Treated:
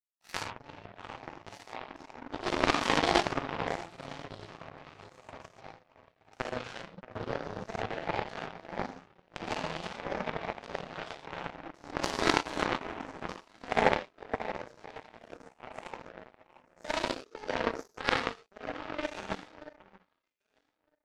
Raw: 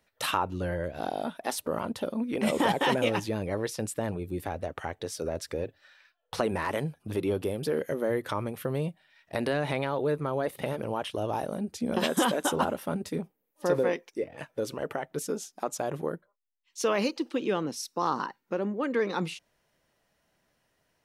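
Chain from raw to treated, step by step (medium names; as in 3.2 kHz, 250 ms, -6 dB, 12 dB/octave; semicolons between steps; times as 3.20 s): sawtooth pitch modulation +10 st, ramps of 355 ms; low-pass 5.7 kHz 24 dB/octave; echo whose repeats swap between lows and highs 629 ms, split 1.4 kHz, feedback 59%, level -4 dB; gated-style reverb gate 170 ms flat, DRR -6.5 dB; power-law waveshaper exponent 3; trim +5 dB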